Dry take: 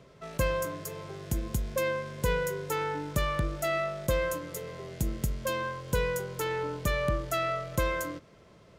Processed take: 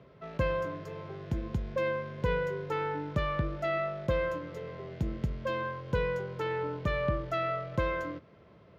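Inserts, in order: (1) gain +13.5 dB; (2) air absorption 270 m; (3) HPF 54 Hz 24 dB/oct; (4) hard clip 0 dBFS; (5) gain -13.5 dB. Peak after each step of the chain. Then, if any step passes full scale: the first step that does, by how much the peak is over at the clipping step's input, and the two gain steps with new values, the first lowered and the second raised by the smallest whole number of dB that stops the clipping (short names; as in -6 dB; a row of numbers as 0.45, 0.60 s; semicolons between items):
-0.5, -2.0, -2.0, -2.0, -15.5 dBFS; no overload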